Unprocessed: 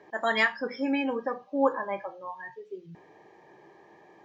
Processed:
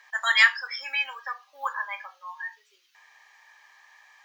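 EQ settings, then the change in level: HPF 1200 Hz 24 dB/oct; high shelf 4300 Hz +10 dB; +6.0 dB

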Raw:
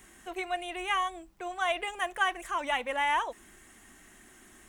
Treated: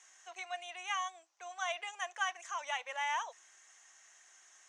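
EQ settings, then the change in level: HPF 630 Hz 24 dB/oct; ladder low-pass 6700 Hz, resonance 70%; +4.0 dB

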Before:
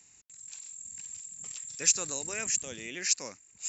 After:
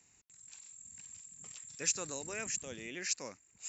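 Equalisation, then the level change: high shelf 3000 Hz -7.5 dB; -2.0 dB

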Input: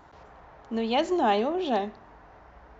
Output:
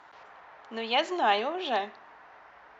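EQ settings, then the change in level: band-pass 2200 Hz, Q 0.68; +5.0 dB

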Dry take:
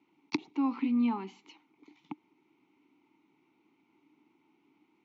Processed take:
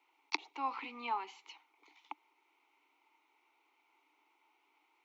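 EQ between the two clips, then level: HPF 550 Hz 24 dB/oct; +2.5 dB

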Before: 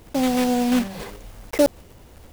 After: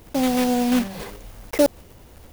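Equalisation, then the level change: high shelf 12000 Hz +4.5 dB; notch 7700 Hz, Q 26; 0.0 dB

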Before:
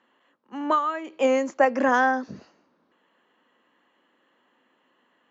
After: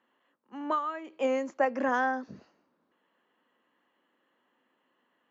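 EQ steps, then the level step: high shelf 5700 Hz -6.5 dB; -7.0 dB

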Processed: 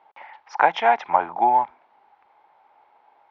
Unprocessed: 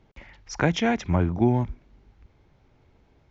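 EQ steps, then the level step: resonant high-pass 840 Hz, resonance Q 5.1; air absorption 300 m; +5.0 dB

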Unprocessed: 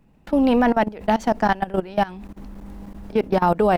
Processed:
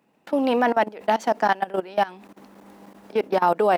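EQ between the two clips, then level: HPF 350 Hz 12 dB/oct; 0.0 dB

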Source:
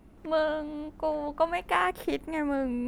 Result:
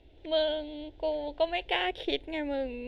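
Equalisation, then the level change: synth low-pass 3500 Hz, resonance Q 4.7; fixed phaser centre 490 Hz, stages 4; 0.0 dB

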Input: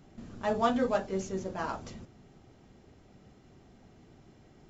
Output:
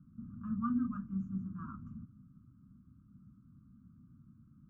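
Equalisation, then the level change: HPF 130 Hz 6 dB/oct; inverse Chebyshev band-stop 400–860 Hz, stop band 50 dB; elliptic low-pass 1200 Hz, stop band 40 dB; +4.0 dB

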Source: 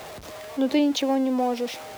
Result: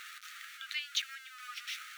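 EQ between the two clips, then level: brick-wall FIR high-pass 1200 Hz; high shelf 3500 Hz -7 dB; notch 5000 Hz, Q 14; 0.0 dB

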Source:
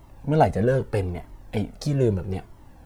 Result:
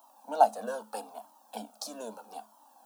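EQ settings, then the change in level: rippled Chebyshev high-pass 210 Hz, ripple 9 dB; tilt +3 dB/oct; fixed phaser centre 850 Hz, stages 4; +2.0 dB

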